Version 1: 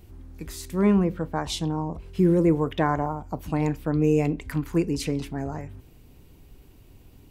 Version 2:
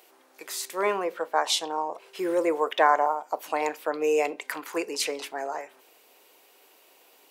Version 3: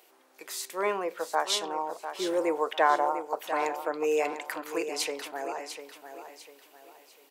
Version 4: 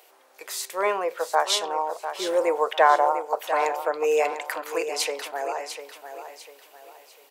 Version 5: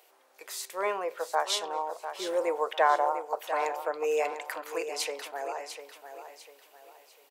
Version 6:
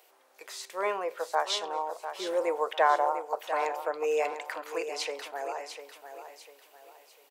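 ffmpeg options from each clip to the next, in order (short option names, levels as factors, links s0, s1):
-af "highpass=f=510:w=0.5412,highpass=f=510:w=1.3066,volume=2"
-af "aecho=1:1:698|1396|2094|2792:0.316|0.111|0.0387|0.0136,volume=0.708"
-af "lowshelf=f=380:t=q:w=1.5:g=-8,volume=1.68"
-filter_complex "[0:a]asplit=2[s0][s1];[s1]adelay=233.2,volume=0.0355,highshelf=f=4000:g=-5.25[s2];[s0][s2]amix=inputs=2:normalize=0,volume=0.501"
-filter_complex "[0:a]acrossover=split=6900[s0][s1];[s1]acompressor=threshold=0.00251:ratio=4:attack=1:release=60[s2];[s0][s2]amix=inputs=2:normalize=0"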